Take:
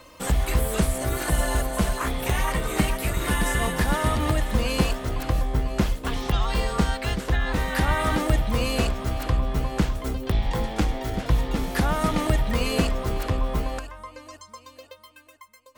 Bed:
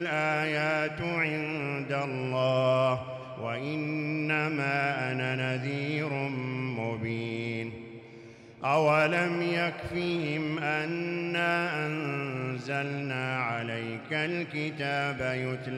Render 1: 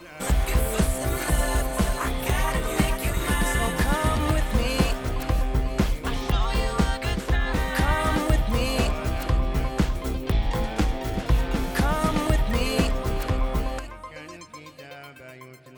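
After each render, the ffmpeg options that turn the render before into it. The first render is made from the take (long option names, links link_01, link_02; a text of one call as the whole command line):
ffmpeg -i in.wav -i bed.wav -filter_complex "[1:a]volume=-13.5dB[link_01];[0:a][link_01]amix=inputs=2:normalize=0" out.wav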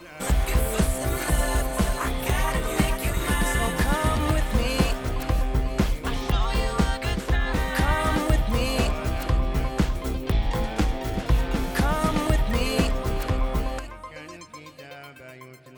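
ffmpeg -i in.wav -filter_complex "[0:a]asettb=1/sr,asplit=3[link_01][link_02][link_03];[link_01]atrim=end=3.514[link_04];[link_02]atrim=start=3.51:end=4.59,asetpts=PTS-STARTPTS,afade=type=in:duration=0.004:curve=qsin,afade=type=out:start_time=1.076:duration=0.004:curve=qsin,aeval=exprs='val(0)*gte(abs(val(0)),0.00596)':channel_layout=same[link_05];[link_03]atrim=start=4.586[link_06];[link_04][link_05]acrossfade=duration=0.004:curve1=hsin:curve2=qsin[link_07];[link_07][link_06]acrossfade=duration=0.004:curve1=qsin:curve2=hsin" out.wav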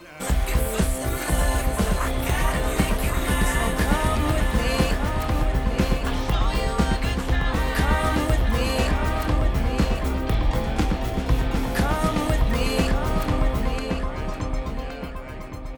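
ffmpeg -i in.wav -filter_complex "[0:a]asplit=2[link_01][link_02];[link_02]adelay=27,volume=-12dB[link_03];[link_01][link_03]amix=inputs=2:normalize=0,asplit=2[link_04][link_05];[link_05]adelay=1118,lowpass=frequency=3000:poles=1,volume=-4.5dB,asplit=2[link_06][link_07];[link_07]adelay=1118,lowpass=frequency=3000:poles=1,volume=0.43,asplit=2[link_08][link_09];[link_09]adelay=1118,lowpass=frequency=3000:poles=1,volume=0.43,asplit=2[link_10][link_11];[link_11]adelay=1118,lowpass=frequency=3000:poles=1,volume=0.43,asplit=2[link_12][link_13];[link_13]adelay=1118,lowpass=frequency=3000:poles=1,volume=0.43[link_14];[link_04][link_06][link_08][link_10][link_12][link_14]amix=inputs=6:normalize=0" out.wav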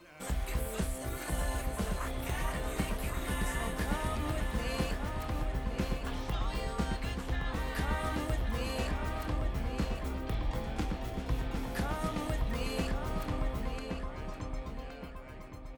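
ffmpeg -i in.wav -af "volume=-12dB" out.wav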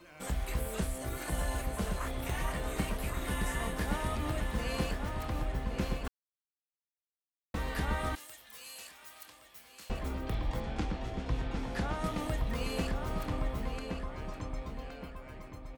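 ffmpeg -i in.wav -filter_complex "[0:a]asettb=1/sr,asplit=3[link_01][link_02][link_03];[link_01]atrim=end=8.154[link_04];[link_02]atrim=start=8.15:end=9.9,asetpts=PTS-STARTPTS,afade=type=in:duration=0.004:curve=qsin,afade=type=out:start_time=1.746:duration=0.004:curve=qsin,aderivative[link_05];[link_03]atrim=start=9.896[link_06];[link_04][link_05]acrossfade=duration=0.004:curve1=hsin:curve2=qsin[link_07];[link_07][link_06]acrossfade=duration=0.004:curve1=qsin:curve2=hsin,asettb=1/sr,asplit=3[link_08][link_09][link_10];[link_08]atrim=end=10.604[link_11];[link_09]atrim=start=10.6:end=12.04,asetpts=PTS-STARTPTS,afade=type=in:duration=0.004:curve=qsin,afade=type=out:start_time=1.436:duration=0.004:curve=qsin,lowpass=7100[link_12];[link_10]atrim=start=12.036[link_13];[link_11][link_12]acrossfade=duration=0.004:curve1=hsin:curve2=qsin[link_14];[link_14][link_13]acrossfade=duration=0.004:curve1=qsin:curve2=hsin,asplit=3[link_15][link_16][link_17];[link_15]atrim=end=6.08,asetpts=PTS-STARTPTS,afade=type=out:start_time=6.076:duration=0.004:curve=hsin[link_18];[link_16]atrim=start=6.08:end=7.54,asetpts=PTS-STARTPTS,volume=0[link_19];[link_17]atrim=start=7.54,asetpts=PTS-STARTPTS,afade=type=in:duration=0.004:curve=hsin[link_20];[link_18][link_19][link_20]concat=n=3:v=0:a=1" out.wav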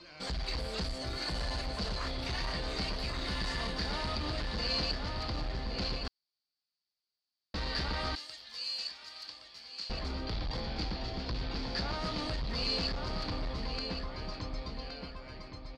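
ffmpeg -i in.wav -af "asoftclip=type=hard:threshold=-32dB,lowpass=frequency=4600:width_type=q:width=12" out.wav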